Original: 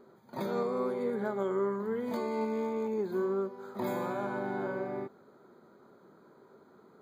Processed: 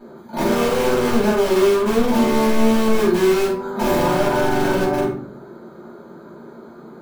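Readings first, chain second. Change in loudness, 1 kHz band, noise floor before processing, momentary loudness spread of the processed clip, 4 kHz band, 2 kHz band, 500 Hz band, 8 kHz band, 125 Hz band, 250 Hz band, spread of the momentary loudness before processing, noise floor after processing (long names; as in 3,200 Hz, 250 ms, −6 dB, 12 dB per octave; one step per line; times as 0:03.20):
+15.5 dB, +15.5 dB, −60 dBFS, 6 LU, +26.0 dB, +18.0 dB, +14.5 dB, can't be measured, +17.0 dB, +17.0 dB, 7 LU, −41 dBFS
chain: mains-hum notches 50/100/150/200 Hz
in parallel at −4 dB: wrap-around overflow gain 29.5 dB
on the sum: rectangular room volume 430 cubic metres, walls furnished, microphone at 7.8 metres
level +1.5 dB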